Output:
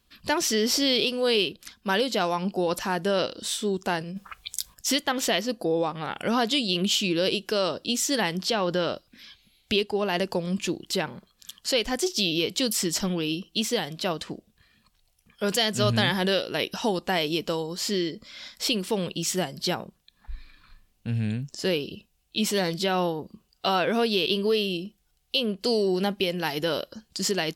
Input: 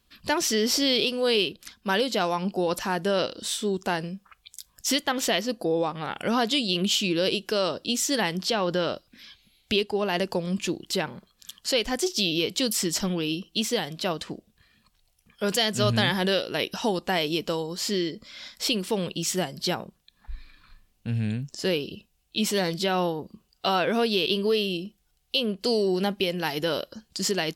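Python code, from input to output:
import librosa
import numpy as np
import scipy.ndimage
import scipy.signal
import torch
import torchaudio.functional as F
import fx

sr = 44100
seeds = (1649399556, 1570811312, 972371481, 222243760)

y = fx.over_compress(x, sr, threshold_db=-40.0, ratio=-1.0, at=(3.99, 4.73), fade=0.02)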